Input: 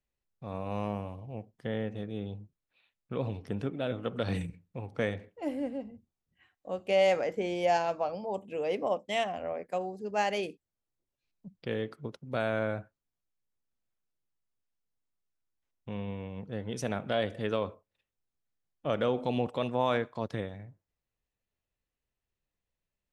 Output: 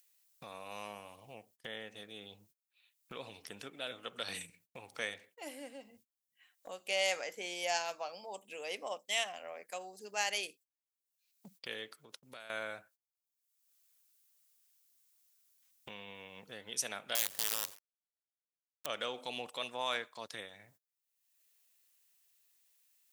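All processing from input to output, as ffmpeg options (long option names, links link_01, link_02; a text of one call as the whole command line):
ffmpeg -i in.wav -filter_complex "[0:a]asettb=1/sr,asplit=3[link_01][link_02][link_03];[link_01]atrim=end=11.924[link_04];[link_02]atrim=start=11.92:end=12.5,asetpts=PTS-STARTPTS,afade=type=in:duration=0.004:curve=qsin,afade=type=out:start_time=0.576:duration=0.004:curve=qsin,acompressor=threshold=-46dB:ratio=3:attack=3.2:release=140:knee=1:detection=peak,highpass=47[link_05];[link_03]atrim=start=12.496[link_06];[link_04][link_05]acrossfade=duration=0.004:curve1=hsin:curve2=qsin[link_07];[link_07][link_06]acrossfade=duration=0.004:curve1=qsin:curve2=hsin,asettb=1/sr,asplit=3[link_08][link_09][link_10];[link_08]atrim=end=17.154[link_11];[link_09]atrim=start=17.15:end=18.86,asetpts=PTS-STARTPTS,afade=type=in:duration=0.004:curve=qsin,afade=type=out:start_time=1.706:duration=0.004:curve=qsin,equalizer=frequency=110:width=1.5:gain=8,acompressor=threshold=-34dB:ratio=3:attack=3.2:release=140:knee=1:detection=peak,acrusher=bits=6:dc=4:mix=0:aa=0.000001[link_12];[link_10]atrim=start=18.856[link_13];[link_11][link_12]acrossfade=duration=0.004:curve1=hsin:curve2=qsin[link_14];[link_14][link_13]acrossfade=duration=0.004:curve1=qsin:curve2=hsin,agate=range=-26dB:threshold=-54dB:ratio=16:detection=peak,aderivative,acompressor=mode=upward:threshold=-53dB:ratio=2.5,volume=10dB" out.wav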